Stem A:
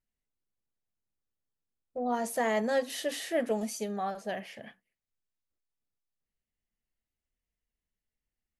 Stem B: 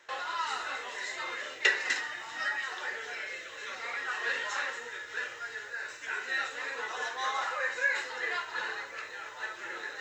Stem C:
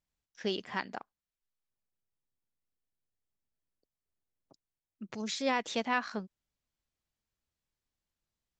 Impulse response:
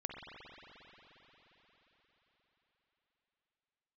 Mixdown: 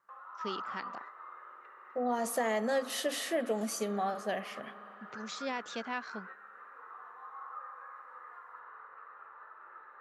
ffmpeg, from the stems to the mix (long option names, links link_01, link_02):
-filter_complex "[0:a]acompressor=threshold=-29dB:ratio=6,highpass=160,volume=0.5dB,asplit=2[link_01][link_02];[link_02]volume=-14.5dB[link_03];[1:a]acompressor=threshold=-36dB:ratio=6,lowpass=frequency=1200:width_type=q:width=11,volume=-14.5dB,asplit=2[link_04][link_05];[link_05]volume=-3.5dB[link_06];[2:a]volume=-6.5dB,asplit=2[link_07][link_08];[link_08]apad=whole_len=441192[link_09];[link_04][link_09]sidechaingate=range=-33dB:threshold=-56dB:ratio=16:detection=peak[link_10];[3:a]atrim=start_sample=2205[link_11];[link_03][link_06]amix=inputs=2:normalize=0[link_12];[link_12][link_11]afir=irnorm=-1:irlink=0[link_13];[link_01][link_10][link_07][link_13]amix=inputs=4:normalize=0,highpass=110"